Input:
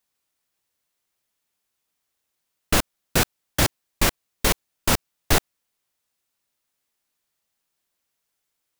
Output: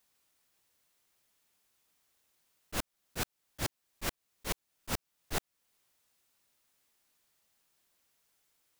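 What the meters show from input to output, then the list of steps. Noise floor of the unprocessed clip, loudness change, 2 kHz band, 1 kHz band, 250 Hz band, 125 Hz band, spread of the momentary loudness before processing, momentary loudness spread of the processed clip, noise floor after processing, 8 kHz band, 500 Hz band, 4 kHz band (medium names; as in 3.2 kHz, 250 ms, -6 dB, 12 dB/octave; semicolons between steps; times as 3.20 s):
-79 dBFS, -16.0 dB, -15.5 dB, -15.5 dB, -16.0 dB, -16.0 dB, 2 LU, 2 LU, -84 dBFS, -15.5 dB, -16.0 dB, -15.5 dB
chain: slow attack 447 ms; trim +3.5 dB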